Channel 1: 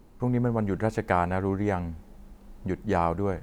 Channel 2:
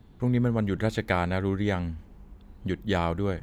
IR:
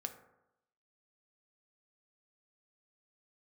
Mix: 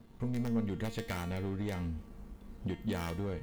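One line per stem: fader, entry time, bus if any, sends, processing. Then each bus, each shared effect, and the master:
-1.5 dB, 0.00 s, no send, integer overflow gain 15 dB; compression 6:1, threshold -31 dBFS, peak gain reduction 10.5 dB
+0.5 dB, 0.00 s, no send, compression, threshold -28 dBFS, peak gain reduction 9 dB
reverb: none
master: waveshaping leveller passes 2; feedback comb 230 Hz, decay 0.5 s, harmonics all, mix 80%

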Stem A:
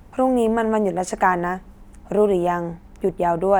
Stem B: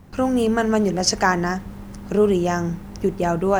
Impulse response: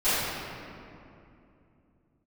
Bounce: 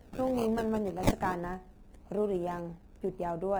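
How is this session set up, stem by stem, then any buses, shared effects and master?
-12.5 dB, 0.00 s, no send, feedback comb 74 Hz, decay 0.4 s, harmonics all, mix 50%
-3.0 dB, 0.00 s, no send, steep high-pass 1.7 kHz 96 dB/octave; treble shelf 5.9 kHz +10 dB; decimation with a swept rate 34×, swing 60% 1.8 Hz; auto duck -16 dB, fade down 1.55 s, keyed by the first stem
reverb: none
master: bass shelf 490 Hz +6.5 dB

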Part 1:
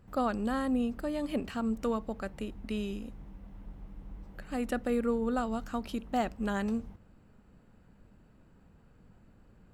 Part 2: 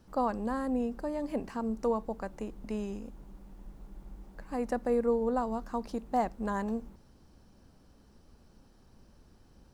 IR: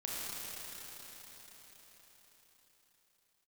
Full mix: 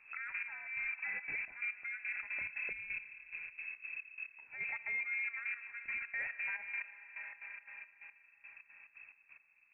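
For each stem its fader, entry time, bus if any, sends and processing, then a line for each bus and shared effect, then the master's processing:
-3.0 dB, 0.00 s, no send, band-pass filter 920 Hz, Q 1.2
-2.5 dB, 1 ms, send -8.5 dB, hum notches 60/120/180/240/300 Hz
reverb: on, RT60 5.2 s, pre-delay 27 ms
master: trance gate "xx..x....xx.xx." 176 bpm -12 dB; frequency inversion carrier 2.6 kHz; peak limiter -31 dBFS, peak gain reduction 10.5 dB

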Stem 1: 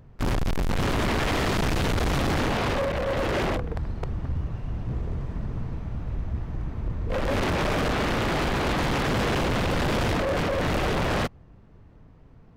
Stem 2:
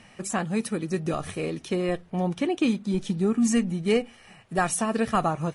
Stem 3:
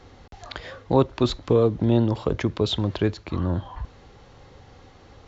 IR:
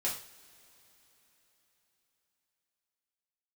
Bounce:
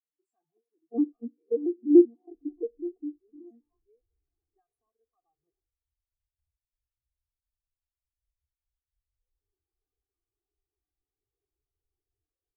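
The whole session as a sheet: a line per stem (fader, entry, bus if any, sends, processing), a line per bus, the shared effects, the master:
-14.5 dB, 2.10 s, bus A, no send, feedback comb 410 Hz, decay 0.31 s, harmonics odd, mix 50%
-0.5 dB, 0.00 s, bus A, no send, auto duck -12 dB, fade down 1.10 s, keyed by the third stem
-3.5 dB, 0.00 s, no bus, send -9 dB, vocoder on a broken chord major triad, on A#3, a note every 97 ms; Chebyshev low-pass 1.1 kHz, order 5
bus A: 0.0 dB, peak limiter -30.5 dBFS, peak gain reduction 11.5 dB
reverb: on, pre-delay 3 ms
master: comb 2.6 ms, depth 99%; spectral contrast expander 2.5:1

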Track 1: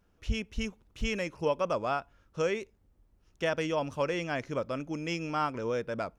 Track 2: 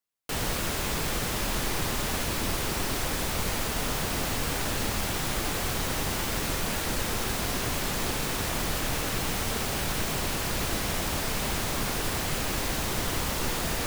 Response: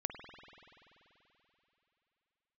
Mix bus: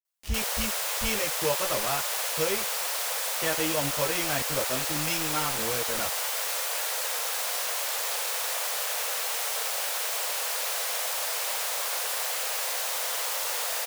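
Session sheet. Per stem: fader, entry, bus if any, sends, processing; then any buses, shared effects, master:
+2.0 dB, 0.00 s, no send, treble shelf 3.2 kHz +10.5 dB; bit crusher 6-bit; chorus voices 4, 0.87 Hz, delay 14 ms, depth 1.4 ms
-1.5 dB, 0.05 s, no send, steep high-pass 470 Hz 72 dB/octave; treble shelf 4.9 kHz +6.5 dB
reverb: none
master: none

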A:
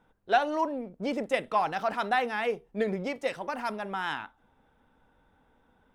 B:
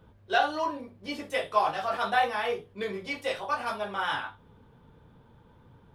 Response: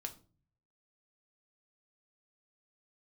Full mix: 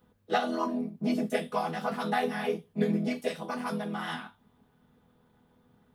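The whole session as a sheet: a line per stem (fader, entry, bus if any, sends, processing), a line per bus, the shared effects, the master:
+2.0 dB, 0.00 s, no send, vocoder on a held chord major triad, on E3; peaking EQ 700 Hz -4 dB 2.1 oct
+0.5 dB, 0.00 s, polarity flipped, no send, pre-emphasis filter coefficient 0.8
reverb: none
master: none

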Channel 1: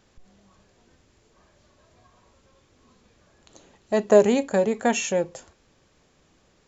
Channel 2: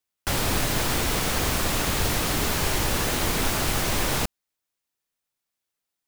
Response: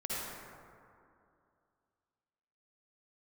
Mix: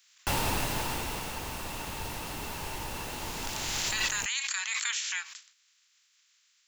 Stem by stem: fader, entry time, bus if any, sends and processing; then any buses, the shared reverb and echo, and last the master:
-4.5 dB, 0.00 s, no send, spectral peaks clipped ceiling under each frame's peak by 27 dB; Bessel high-pass 2.1 kHz, order 8; swell ahead of each attack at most 28 dB/s
-1.0 dB, 0.00 s, no send, small resonant body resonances 900/2700 Hz, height 10 dB, ringing for 25 ms; auto duck -13 dB, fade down 1.40 s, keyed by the first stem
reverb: none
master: peak limiter -18.5 dBFS, peak gain reduction 9 dB

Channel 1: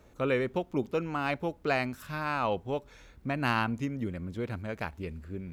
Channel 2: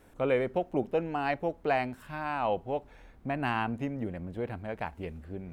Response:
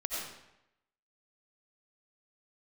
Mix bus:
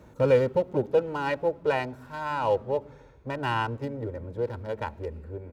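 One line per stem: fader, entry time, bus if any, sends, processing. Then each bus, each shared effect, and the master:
+0.5 dB, 0.00 s, send -20 dB, bass shelf 450 Hz +10 dB; slew-rate limiter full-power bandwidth 16 Hz; auto duck -16 dB, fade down 1.95 s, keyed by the second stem
+1.5 dB, 2.4 ms, no send, local Wiener filter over 15 samples; peaking EQ 2.2 kHz -7 dB 0.27 oct; comb 2.1 ms, depth 97%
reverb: on, RT60 0.85 s, pre-delay 50 ms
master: high-pass 79 Hz 12 dB/octave

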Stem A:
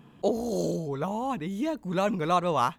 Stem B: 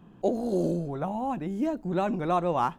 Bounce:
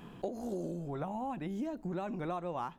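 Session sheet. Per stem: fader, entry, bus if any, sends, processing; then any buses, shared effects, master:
0.0 dB, 0.00 s, no send, peaking EQ 180 Hz -9.5 dB 1.1 oct; compressor with a negative ratio -35 dBFS; auto duck -15 dB, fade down 1.00 s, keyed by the second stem
+1.0 dB, 0.00 s, polarity flipped, no send, none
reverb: none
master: compression 6:1, threshold -35 dBFS, peak gain reduction 15 dB

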